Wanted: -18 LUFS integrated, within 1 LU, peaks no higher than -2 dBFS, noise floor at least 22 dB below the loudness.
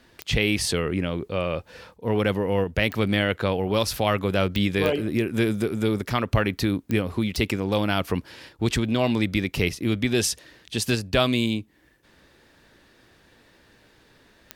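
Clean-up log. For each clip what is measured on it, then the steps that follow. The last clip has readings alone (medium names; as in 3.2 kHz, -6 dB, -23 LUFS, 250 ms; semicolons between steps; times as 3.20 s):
clicks found 7; loudness -24.5 LUFS; peak level -5.5 dBFS; loudness target -18.0 LUFS
-> de-click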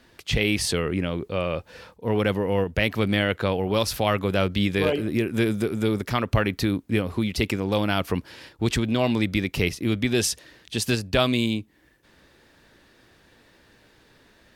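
clicks found 0; loudness -24.5 LUFS; peak level -5.5 dBFS; loudness target -18.0 LUFS
-> trim +6.5 dB; peak limiter -2 dBFS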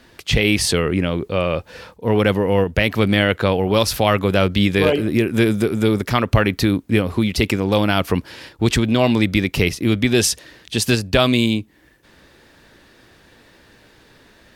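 loudness -18.5 LUFS; peak level -2.0 dBFS; noise floor -52 dBFS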